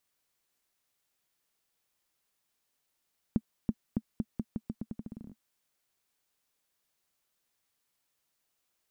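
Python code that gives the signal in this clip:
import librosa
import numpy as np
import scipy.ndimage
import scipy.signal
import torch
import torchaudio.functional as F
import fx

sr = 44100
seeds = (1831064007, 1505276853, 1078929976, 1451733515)

y = fx.bouncing_ball(sr, first_gap_s=0.33, ratio=0.84, hz=220.0, decay_ms=50.0, level_db=-15.0)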